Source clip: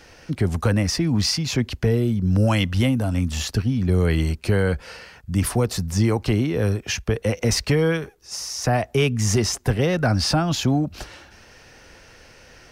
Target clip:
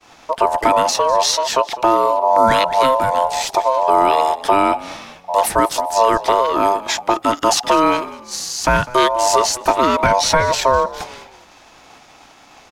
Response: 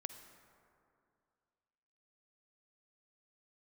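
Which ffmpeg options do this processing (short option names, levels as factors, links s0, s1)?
-filter_complex "[0:a]aeval=exprs='val(0)*sin(2*PI*790*n/s)':c=same,agate=range=0.0224:threshold=0.00501:ratio=3:detection=peak,asplit=4[s0][s1][s2][s3];[s1]adelay=201,afreqshift=-45,volume=0.119[s4];[s2]adelay=402,afreqshift=-90,volume=0.0452[s5];[s3]adelay=603,afreqshift=-135,volume=0.0172[s6];[s0][s4][s5][s6]amix=inputs=4:normalize=0,volume=2.51"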